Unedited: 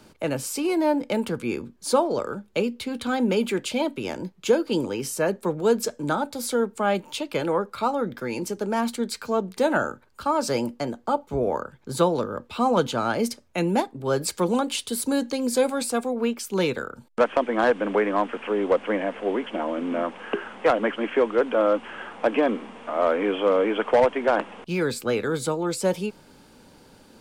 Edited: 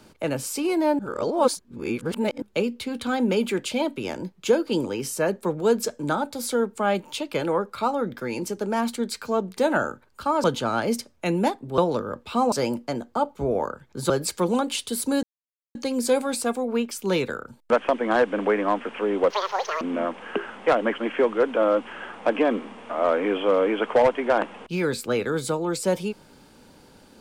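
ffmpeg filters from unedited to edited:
-filter_complex "[0:a]asplit=10[a][b][c][d][e][f][g][h][i][j];[a]atrim=end=0.992[k];[b]atrim=start=0.988:end=2.422,asetpts=PTS-STARTPTS,areverse[l];[c]atrim=start=2.418:end=10.442[m];[d]atrim=start=12.758:end=14.102[n];[e]atrim=start=12.018:end=12.762[o];[f]atrim=start=10.438:end=12.022[p];[g]atrim=start=14.098:end=15.23,asetpts=PTS-STARTPTS,afade=t=out:st=1.128:d=0.004:c=hsin,apad=pad_dur=0.52[q];[h]atrim=start=15.23:end=18.784,asetpts=PTS-STARTPTS,afade=t=in:d=0.004:c=hsin[r];[i]atrim=start=18.78:end=19.79,asetpts=PTS-STARTPTS,asetrate=86877,aresample=44100[s];[j]atrim=start=19.786[t];[k][l]acrossfade=d=0.004:c1=hsin:c2=hsin[u];[u][m]acrossfade=d=0.004:c1=hsin:c2=hsin[v];[v][n]acrossfade=d=0.004:c1=hsin:c2=hsin[w];[w][o]acrossfade=d=0.004:c1=hsin:c2=hsin[x];[x][p]acrossfade=d=0.004:c1=hsin:c2=hsin[y];[q][r]concat=n=2:v=0:a=1[z];[y][z]acrossfade=d=0.004:c1=hsin:c2=hsin[aa];[aa][s]acrossfade=d=0.004:c1=hsin:c2=hsin[ab];[ab][t]acrossfade=d=0.004:c1=hsin:c2=hsin"

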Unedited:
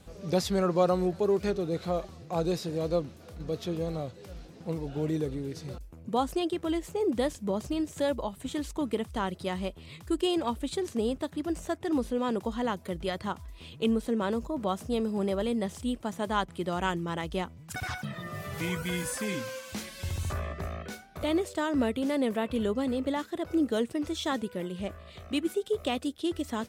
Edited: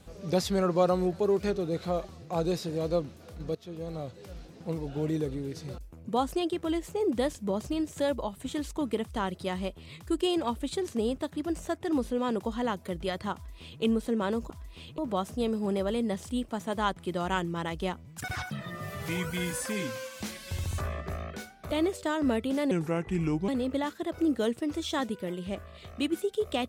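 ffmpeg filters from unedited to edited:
-filter_complex "[0:a]asplit=6[a][b][c][d][e][f];[a]atrim=end=3.55,asetpts=PTS-STARTPTS,afade=t=out:st=3.546:d=0.004:c=hsin:silence=0.149624[g];[b]atrim=start=3.55:end=14.502,asetpts=PTS-STARTPTS,afade=t=in:d=0.63:silence=0.149624[h];[c]atrim=start=13.338:end=13.822[i];[d]atrim=start=14.498:end=22.234[j];[e]atrim=start=22.23:end=22.81,asetpts=PTS-STARTPTS,asetrate=33075,aresample=44100[k];[f]atrim=start=22.806[l];[g][h]concat=n=2:v=0:a=1[m];[m][i]acrossfade=d=0.004:c1=hsin:c2=hsin[n];[n][j]acrossfade=d=0.004:c1=hsin:c2=hsin[o];[o][k]acrossfade=d=0.004:c1=hsin:c2=hsin[p];[p][l]acrossfade=d=0.004:c1=hsin:c2=hsin"

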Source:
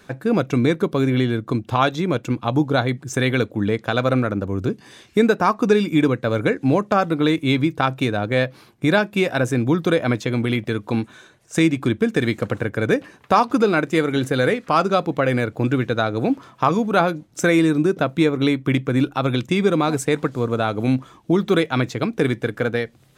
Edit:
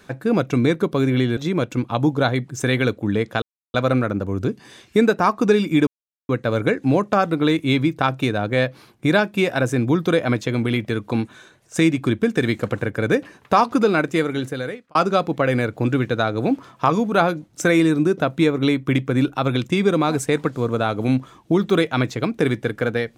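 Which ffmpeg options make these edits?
-filter_complex "[0:a]asplit=5[a][b][c][d][e];[a]atrim=end=1.372[f];[b]atrim=start=1.898:end=3.95,asetpts=PTS-STARTPTS,afade=t=out:st=2.048:d=0.004:c=hsin,apad=pad_dur=0.32[g];[c]atrim=start=3.95:end=6.08,asetpts=PTS-STARTPTS,afade=t=in:d=0.004:c=hsin,afade=t=out:st=2.126:d=0.004:c=hsin,apad=pad_dur=0.42[h];[d]atrim=start=6.08:end=14.74,asetpts=PTS-STARTPTS,afade=t=in:d=0.004:c=hsin,afade=t=out:st=7.79:d=0.87[i];[e]atrim=start=14.74,asetpts=PTS-STARTPTS,afade=t=in:d=0.004:c=hsin[j];[g][h][i][j]concat=n=4:v=0:a=1[k];[f][k]acrossfade=d=0.004:c1=hsin:c2=hsin"

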